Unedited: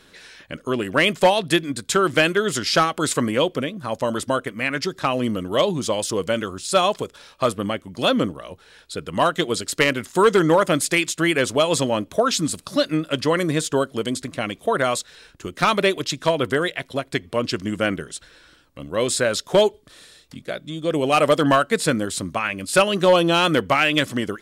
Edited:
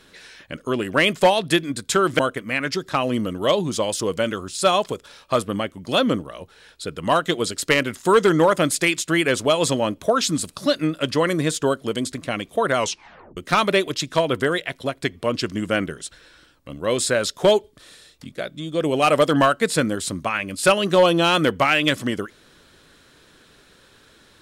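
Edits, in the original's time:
2.19–4.29 s: delete
14.87 s: tape stop 0.60 s

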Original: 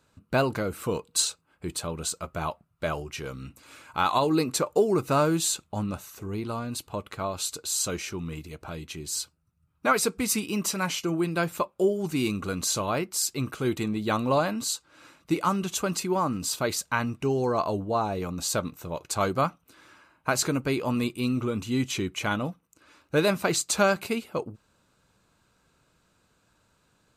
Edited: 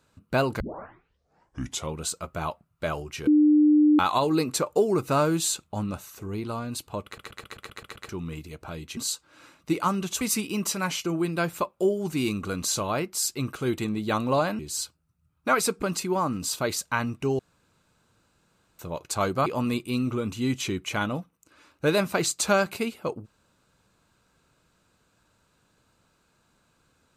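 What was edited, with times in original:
0.60 s: tape start 1.39 s
3.27–3.99 s: bleep 300 Hz -14.5 dBFS
7.05 s: stutter in place 0.13 s, 8 plays
8.97–10.20 s: swap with 14.58–15.82 s
17.39–18.79 s: room tone
19.46–20.76 s: delete

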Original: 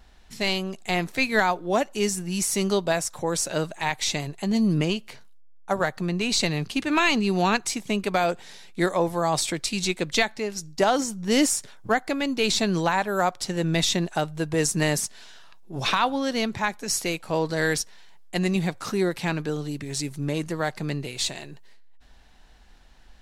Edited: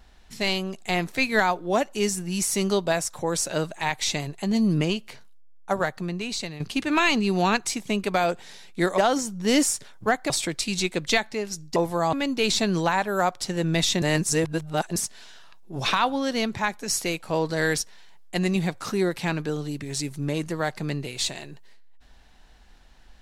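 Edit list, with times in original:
5.73–6.60 s: fade out, to -13 dB
8.98–9.35 s: swap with 10.81–12.13 s
14.02–14.96 s: reverse

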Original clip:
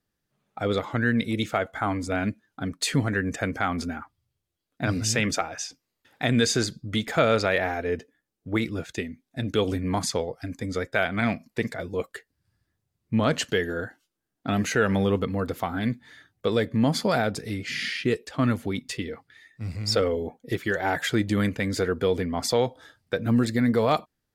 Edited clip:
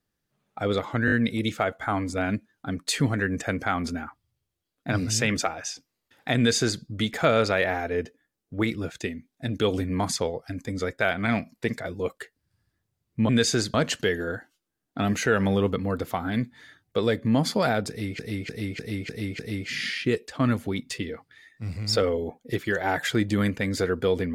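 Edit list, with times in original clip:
1.06 s: stutter 0.02 s, 4 plays
6.31–6.76 s: copy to 13.23 s
17.38–17.68 s: loop, 6 plays

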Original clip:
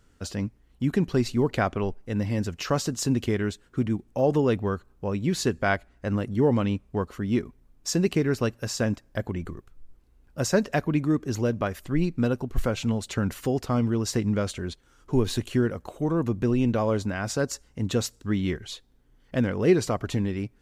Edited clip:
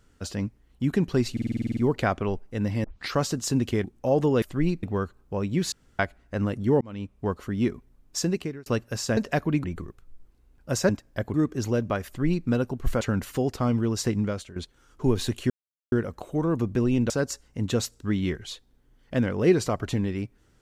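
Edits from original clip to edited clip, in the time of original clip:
1.32 s: stutter 0.05 s, 10 plays
2.39 s: tape start 0.29 s
3.39–3.96 s: delete
5.43–5.70 s: room tone
6.52–6.99 s: fade in
7.88–8.37 s: fade out
8.88–9.33 s: swap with 10.58–11.05 s
11.77–12.18 s: copy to 4.54 s
12.72–13.10 s: delete
14.25–14.65 s: fade out, to -14.5 dB
15.59 s: insert silence 0.42 s
16.77–17.31 s: delete

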